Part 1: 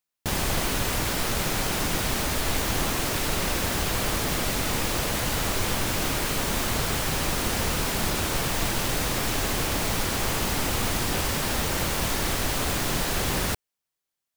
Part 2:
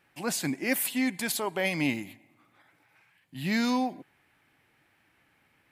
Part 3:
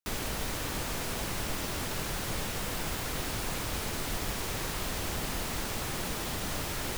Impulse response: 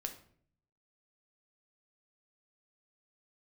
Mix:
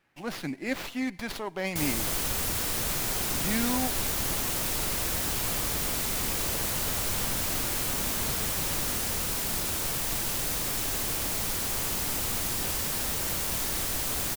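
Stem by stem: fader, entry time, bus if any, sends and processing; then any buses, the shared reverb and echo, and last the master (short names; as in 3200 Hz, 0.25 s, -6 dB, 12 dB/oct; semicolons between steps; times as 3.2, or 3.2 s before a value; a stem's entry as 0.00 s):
-8.5 dB, 1.50 s, no send, high shelf 5600 Hz +11.5 dB
-3.5 dB, 0.00 s, no send, running maximum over 5 samples
-4.0 dB, 2.00 s, no send, dry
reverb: off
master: dry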